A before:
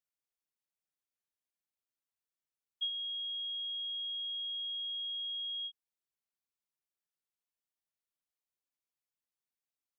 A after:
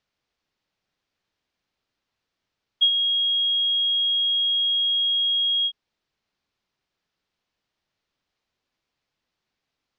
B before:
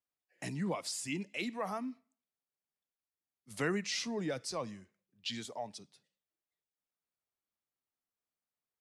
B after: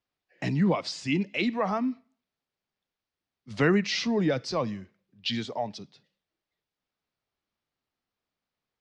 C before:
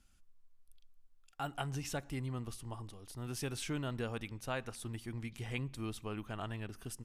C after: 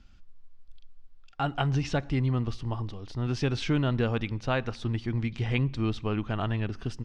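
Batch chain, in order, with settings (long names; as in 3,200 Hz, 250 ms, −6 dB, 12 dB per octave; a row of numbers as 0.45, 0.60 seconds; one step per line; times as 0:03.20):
low-pass filter 5,100 Hz 24 dB per octave
low-shelf EQ 330 Hz +5 dB
normalise the peak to −12 dBFS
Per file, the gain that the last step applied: +17.0, +8.5, +9.0 decibels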